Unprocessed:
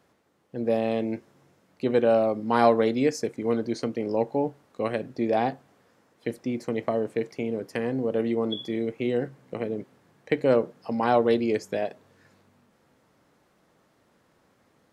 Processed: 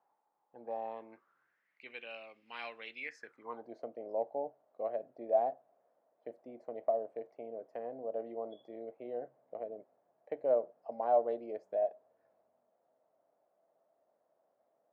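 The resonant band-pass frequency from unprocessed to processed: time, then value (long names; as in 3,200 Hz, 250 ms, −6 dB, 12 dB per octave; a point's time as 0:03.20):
resonant band-pass, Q 7
0:00.84 850 Hz
0:01.99 2,600 Hz
0:02.96 2,600 Hz
0:03.74 650 Hz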